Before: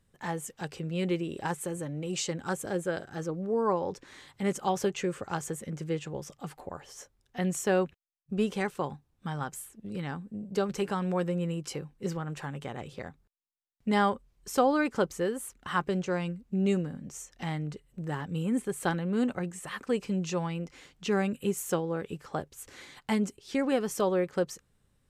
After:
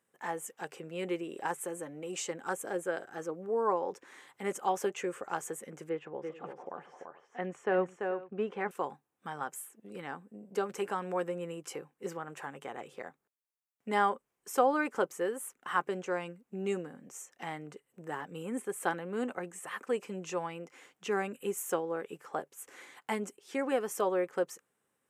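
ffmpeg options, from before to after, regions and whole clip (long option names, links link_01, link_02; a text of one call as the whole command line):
ffmpeg -i in.wav -filter_complex "[0:a]asettb=1/sr,asplit=3[link_01][link_02][link_03];[link_01]atrim=end=5.894[link_04];[link_02]atrim=start=5.89:end=8.71,asetpts=PTS-STARTPTS,afade=type=in:duration=0.004:curve=qsin,afade=type=out:start_time=2.816:duration=0.004:curve=qsin,lowpass=2300,aecho=1:1:339|433:0.531|0.112,atrim=end_sample=124362[link_05];[link_03]atrim=start=8.706[link_06];[link_04][link_05]acrossfade=duration=0.004:curve1=hsin:curve2=qsin[link_07];[link_07][link_06]acrossfade=duration=0.004:curve1=qsin:curve2=hsin,highpass=390,equalizer=frequency=4300:width_type=o:width=0.96:gain=-11,bandreject=frequency=590:width=15" out.wav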